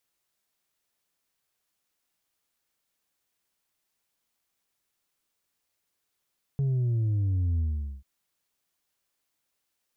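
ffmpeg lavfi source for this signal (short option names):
-f lavfi -i "aevalsrc='0.0668*clip((1.44-t)/0.44,0,1)*tanh(1.41*sin(2*PI*140*1.44/log(65/140)*(exp(log(65/140)*t/1.44)-1)))/tanh(1.41)':d=1.44:s=44100"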